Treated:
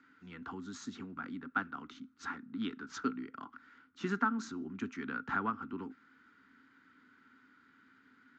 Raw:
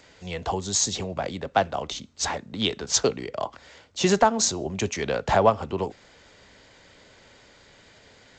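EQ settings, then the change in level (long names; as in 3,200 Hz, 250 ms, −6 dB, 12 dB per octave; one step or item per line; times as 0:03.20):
pair of resonant band-passes 600 Hz, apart 2.4 octaves
+1.0 dB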